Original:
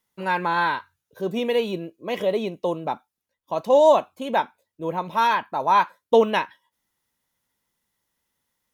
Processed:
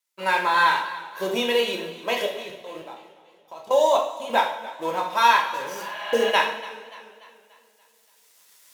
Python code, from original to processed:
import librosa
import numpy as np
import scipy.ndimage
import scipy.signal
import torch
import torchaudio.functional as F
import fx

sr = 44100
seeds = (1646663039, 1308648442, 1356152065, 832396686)

y = fx.law_mismatch(x, sr, coded='A')
y = fx.recorder_agc(y, sr, target_db=-14.5, rise_db_per_s=12.0, max_gain_db=30)
y = fx.weighting(y, sr, curve='A')
y = fx.spec_repair(y, sr, seeds[0], start_s=5.48, length_s=0.79, low_hz=590.0, high_hz=4500.0, source='both')
y = fx.high_shelf(y, sr, hz=5000.0, db=9.5)
y = fx.hum_notches(y, sr, base_hz=50, count=7)
y = fx.level_steps(y, sr, step_db=20, at=(2.26, 4.3))
y = fx.rev_double_slope(y, sr, seeds[1], early_s=0.54, late_s=2.0, knee_db=-17, drr_db=0.0)
y = fx.echo_warbled(y, sr, ms=290, feedback_pct=49, rate_hz=2.8, cents=64, wet_db=-17.5)